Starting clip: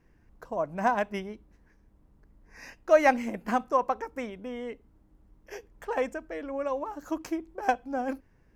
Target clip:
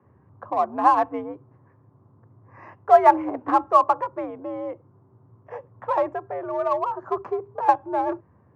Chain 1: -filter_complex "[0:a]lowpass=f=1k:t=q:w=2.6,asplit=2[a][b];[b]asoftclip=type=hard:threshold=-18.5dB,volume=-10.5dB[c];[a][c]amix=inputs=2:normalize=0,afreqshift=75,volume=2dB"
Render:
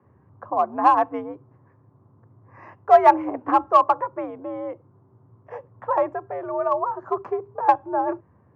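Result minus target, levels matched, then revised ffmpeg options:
hard clip: distortion -6 dB
-filter_complex "[0:a]lowpass=f=1k:t=q:w=2.6,asplit=2[a][b];[b]asoftclip=type=hard:threshold=-28.5dB,volume=-10.5dB[c];[a][c]amix=inputs=2:normalize=0,afreqshift=75,volume=2dB"

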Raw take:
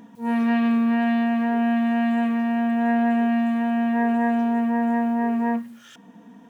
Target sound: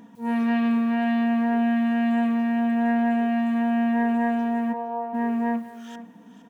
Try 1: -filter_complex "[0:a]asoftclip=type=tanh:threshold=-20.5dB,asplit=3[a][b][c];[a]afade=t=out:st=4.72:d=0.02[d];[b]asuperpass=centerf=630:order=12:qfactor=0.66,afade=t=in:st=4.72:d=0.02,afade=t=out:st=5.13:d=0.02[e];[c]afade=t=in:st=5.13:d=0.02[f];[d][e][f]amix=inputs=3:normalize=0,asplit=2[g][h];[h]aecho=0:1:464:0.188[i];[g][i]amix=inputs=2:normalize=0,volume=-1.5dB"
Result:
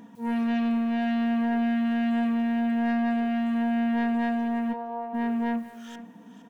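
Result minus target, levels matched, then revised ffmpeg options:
soft clip: distortion +19 dB
-filter_complex "[0:a]asoftclip=type=tanh:threshold=-8.5dB,asplit=3[a][b][c];[a]afade=t=out:st=4.72:d=0.02[d];[b]asuperpass=centerf=630:order=12:qfactor=0.66,afade=t=in:st=4.72:d=0.02,afade=t=out:st=5.13:d=0.02[e];[c]afade=t=in:st=5.13:d=0.02[f];[d][e][f]amix=inputs=3:normalize=0,asplit=2[g][h];[h]aecho=0:1:464:0.188[i];[g][i]amix=inputs=2:normalize=0,volume=-1.5dB"

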